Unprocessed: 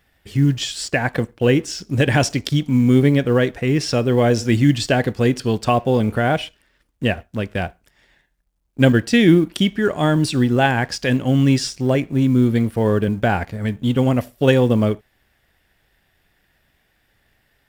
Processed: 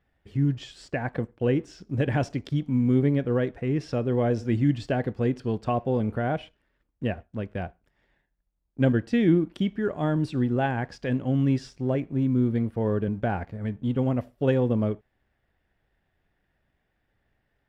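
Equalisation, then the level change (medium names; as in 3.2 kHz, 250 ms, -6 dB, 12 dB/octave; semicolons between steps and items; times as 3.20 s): low-pass 1.1 kHz 6 dB/octave; -7.5 dB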